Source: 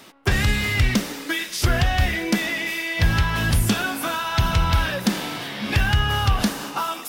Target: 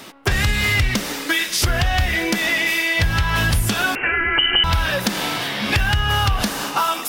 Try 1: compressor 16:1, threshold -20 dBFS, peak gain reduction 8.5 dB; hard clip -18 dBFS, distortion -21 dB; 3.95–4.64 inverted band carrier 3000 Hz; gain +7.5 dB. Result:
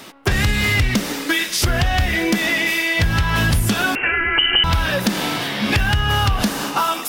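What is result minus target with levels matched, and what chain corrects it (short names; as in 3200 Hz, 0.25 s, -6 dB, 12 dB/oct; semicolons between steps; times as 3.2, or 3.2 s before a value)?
250 Hz band +3.5 dB
compressor 16:1, threshold -20 dBFS, peak gain reduction 8.5 dB; dynamic EQ 230 Hz, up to -5 dB, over -39 dBFS, Q 0.71; hard clip -18 dBFS, distortion -24 dB; 3.95–4.64 inverted band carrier 3000 Hz; gain +7.5 dB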